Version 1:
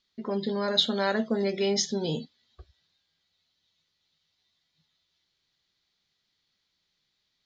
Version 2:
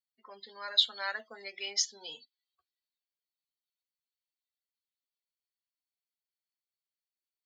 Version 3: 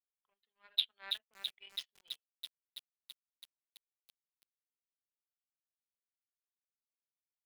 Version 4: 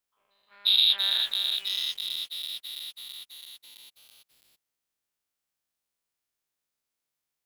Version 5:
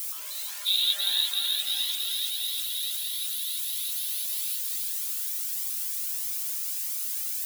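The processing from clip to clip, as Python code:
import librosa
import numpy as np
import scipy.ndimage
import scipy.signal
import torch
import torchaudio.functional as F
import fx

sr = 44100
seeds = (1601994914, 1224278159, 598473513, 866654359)

y1 = fx.bin_expand(x, sr, power=1.5)
y1 = scipy.signal.sosfilt(scipy.signal.butter(2, 1400.0, 'highpass', fs=sr, output='sos'), y1)
y2 = fx.power_curve(y1, sr, exponent=2.0)
y2 = fx.high_shelf_res(y2, sr, hz=4300.0, db=-13.5, q=3.0)
y2 = fx.echo_crushed(y2, sr, ms=330, feedback_pct=80, bits=8, wet_db=-5.0)
y2 = F.gain(torch.from_numpy(y2), -2.0).numpy()
y3 = fx.spec_dilate(y2, sr, span_ms=240)
y3 = F.gain(torch.from_numpy(y3), 4.5).numpy()
y4 = y3 + 0.5 * 10.0 ** (-23.0 / 20.0) * np.diff(np.sign(y3), prepend=np.sign(y3[:1]))
y4 = fx.echo_feedback(y4, sr, ms=349, feedback_pct=59, wet_db=-4.5)
y4 = fx.comb_cascade(y4, sr, direction='rising', hz=1.6)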